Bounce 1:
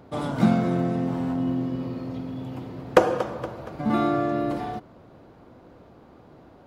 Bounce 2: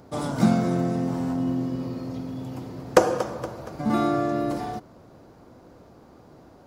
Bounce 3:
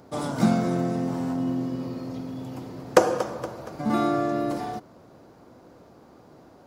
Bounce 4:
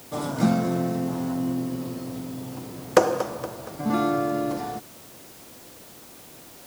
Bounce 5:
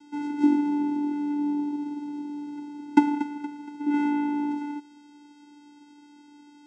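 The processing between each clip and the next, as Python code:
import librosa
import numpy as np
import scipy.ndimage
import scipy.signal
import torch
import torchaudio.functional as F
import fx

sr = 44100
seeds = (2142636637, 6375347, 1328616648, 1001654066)

y1 = fx.high_shelf_res(x, sr, hz=4300.0, db=7.0, q=1.5)
y2 = fx.low_shelf(y1, sr, hz=81.0, db=-10.0)
y3 = fx.quant_dither(y2, sr, seeds[0], bits=8, dither='triangular')
y4 = fx.vocoder(y3, sr, bands=4, carrier='square', carrier_hz=292.0)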